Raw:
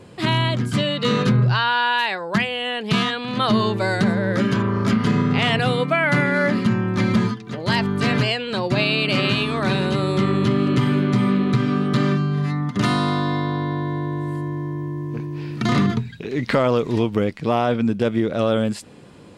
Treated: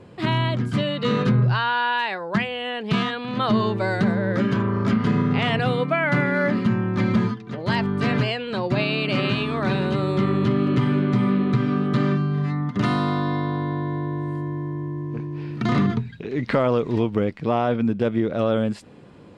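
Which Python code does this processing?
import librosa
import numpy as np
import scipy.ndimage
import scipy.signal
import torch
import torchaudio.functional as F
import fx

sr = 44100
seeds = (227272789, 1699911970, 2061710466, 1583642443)

y = fx.lowpass(x, sr, hz=2400.0, slope=6)
y = y * librosa.db_to_amplitude(-1.5)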